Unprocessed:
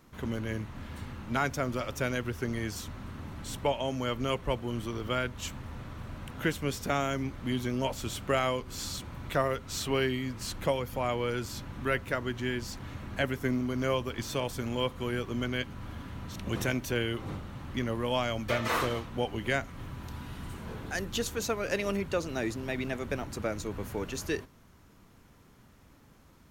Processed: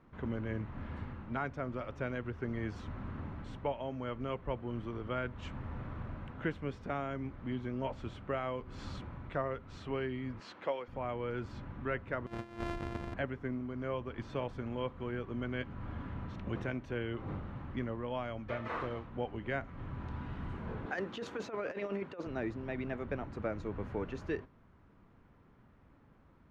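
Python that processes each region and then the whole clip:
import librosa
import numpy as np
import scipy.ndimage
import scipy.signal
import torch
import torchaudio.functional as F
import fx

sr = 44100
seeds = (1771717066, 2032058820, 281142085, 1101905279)

y = fx.chain(x, sr, fx.bandpass_edges(low_hz=370.0, high_hz=5400.0),
    fx.high_shelf(hz=4200.0, db=10.0), at=(10.4, 10.88))
y = fx.chain(y, sr, fx.sample_sort(block=128),
    fx.peak_eq(hz=14000.0, db=14.5, octaves=1.7),
    fx.over_compress(threshold_db=-36.0, ratio=-0.5), at=(12.26, 13.14))
y = fx.chain(y, sr, fx.highpass(hz=250.0, slope=12),
    fx.over_compress(threshold_db=-34.0, ratio=-0.5), at=(20.86, 22.27))
y = scipy.signal.sosfilt(scipy.signal.butter(2, 1900.0, 'lowpass', fs=sr, output='sos'), y)
y = fx.rider(y, sr, range_db=5, speed_s=0.5)
y = y * librosa.db_to_amplitude(-5.0)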